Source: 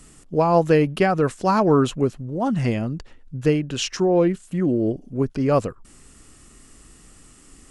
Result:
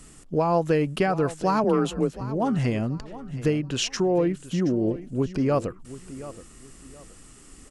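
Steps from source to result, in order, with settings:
downward compressor 2 to 1, threshold −22 dBFS, peak gain reduction 6 dB
repeating echo 724 ms, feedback 29%, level −15.5 dB
0:01.64–0:02.21: frequency shifter +30 Hz

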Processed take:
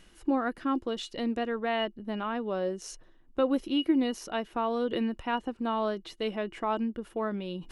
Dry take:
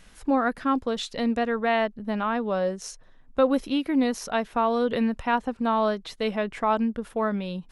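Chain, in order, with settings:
reversed playback
upward compression, threshold −31 dBFS
reversed playback
hollow resonant body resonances 340/2,900 Hz, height 16 dB, ringing for 85 ms
level −7 dB

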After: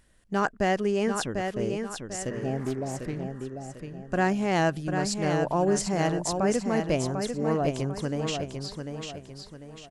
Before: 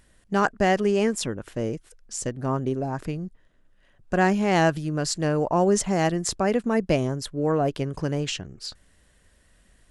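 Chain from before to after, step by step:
0:02.32–0:02.98: healed spectral selection 840–2,000 Hz both
repeating echo 746 ms, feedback 38%, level −6 dB
0:02.57–0:03.24: highs frequency-modulated by the lows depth 0.3 ms
level −4 dB

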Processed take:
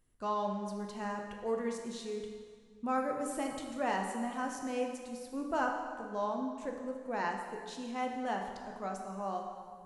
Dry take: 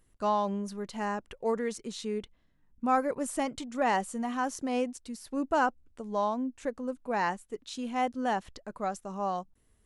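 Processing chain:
dense smooth reverb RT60 1.9 s, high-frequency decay 0.8×, DRR 1.5 dB
level −7 dB

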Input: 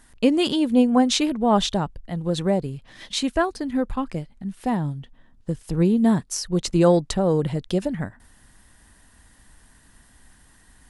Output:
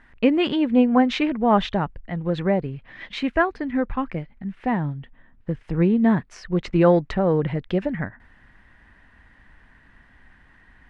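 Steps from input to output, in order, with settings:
low-pass with resonance 2,100 Hz, resonance Q 2.1

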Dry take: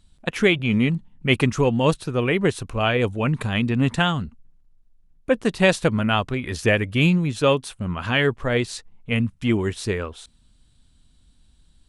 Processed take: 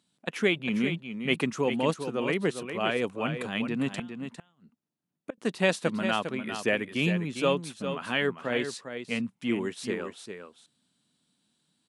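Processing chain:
high-pass filter 170 Hz 24 dB per octave
0:03.97–0:05.38: gate with flip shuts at −14 dBFS, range −29 dB
on a send: single-tap delay 403 ms −8.5 dB
on the sum: level −7 dB

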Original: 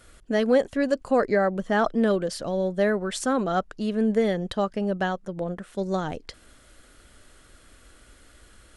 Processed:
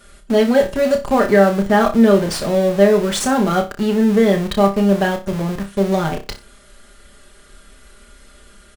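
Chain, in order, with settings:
comb filter 5 ms, depth 83%
in parallel at −9 dB: comparator with hysteresis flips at −33 dBFS
on the sum: flutter between parallel walls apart 5.2 metres, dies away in 0.27 s
level +3.5 dB

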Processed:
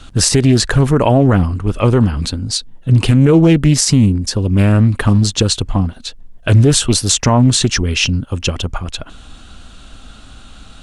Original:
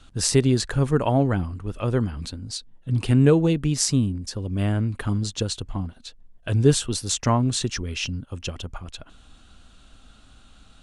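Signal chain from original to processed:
boost into a limiter +14.5 dB
highs frequency-modulated by the lows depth 0.28 ms
level −1 dB

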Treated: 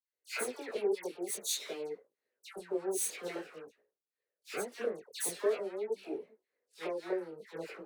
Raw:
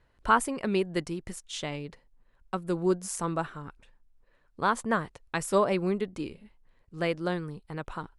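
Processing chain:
lower of the sound and its delayed copy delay 0.5 ms
high-pass with resonance 420 Hz, resonance Q 4.9
high-shelf EQ 3,900 Hz +10 dB
downward compressor 3 to 1, threshold −33 dBFS, peak gain reduction 16.5 dB
multi-voice chorus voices 2, 0.48 Hz, delay 21 ms, depth 4.7 ms
wrong playback speed 24 fps film run at 25 fps
all-pass dispersion lows, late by 139 ms, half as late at 1,600 Hz
multiband upward and downward expander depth 70%

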